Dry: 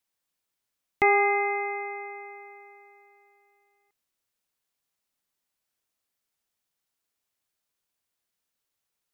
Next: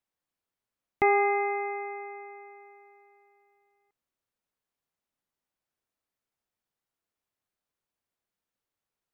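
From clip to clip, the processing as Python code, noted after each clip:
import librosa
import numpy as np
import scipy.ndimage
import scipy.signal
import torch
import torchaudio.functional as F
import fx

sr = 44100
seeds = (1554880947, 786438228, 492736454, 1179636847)

y = fx.high_shelf(x, sr, hz=2300.0, db=-11.0)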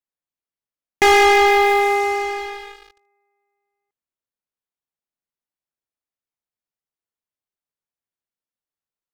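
y = fx.leveller(x, sr, passes=5)
y = y * librosa.db_to_amplitude(2.5)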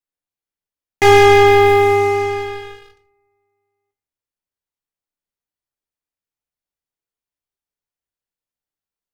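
y = fx.octave_divider(x, sr, octaves=2, level_db=-3.0)
y = fx.room_shoebox(y, sr, seeds[0], volume_m3=40.0, walls='mixed', distance_m=0.4)
y = y * librosa.db_to_amplitude(-1.5)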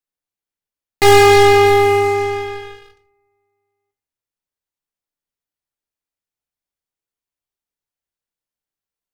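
y = fx.tracing_dist(x, sr, depth_ms=0.15)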